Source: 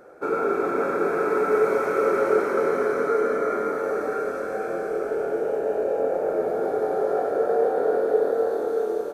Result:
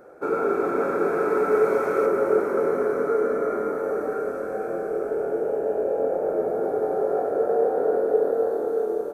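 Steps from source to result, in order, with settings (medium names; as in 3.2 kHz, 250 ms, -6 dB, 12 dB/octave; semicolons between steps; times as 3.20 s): peaking EQ 3.8 kHz -5 dB 2.6 oct, from 2.06 s -11.5 dB; trim +1 dB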